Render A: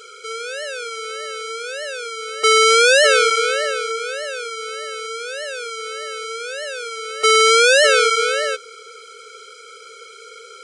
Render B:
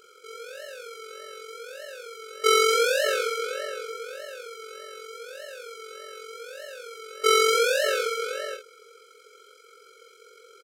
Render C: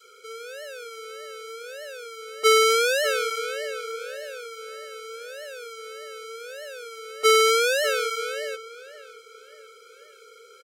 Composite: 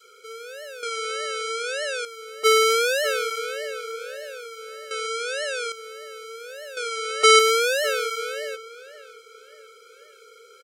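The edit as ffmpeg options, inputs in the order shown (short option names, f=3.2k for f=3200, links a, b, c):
-filter_complex "[0:a]asplit=3[a][b][c];[2:a]asplit=4[d][e][f][g];[d]atrim=end=0.832[h];[a]atrim=start=0.828:end=2.052[i];[e]atrim=start=2.048:end=4.912[j];[b]atrim=start=4.908:end=5.722[k];[f]atrim=start=5.718:end=6.772[l];[c]atrim=start=6.768:end=7.392[m];[g]atrim=start=7.388[n];[h][i]acrossfade=d=0.004:c1=hsin:c2=hsin[o];[o][j]acrossfade=d=0.004:c1=hsin:c2=hsin[p];[p][k]acrossfade=d=0.004:c1=hsin:c2=hsin[q];[q][l]acrossfade=d=0.004:c1=hsin:c2=hsin[r];[r][m]acrossfade=d=0.004:c1=hsin:c2=hsin[s];[s][n]acrossfade=d=0.004:c1=hsin:c2=hsin"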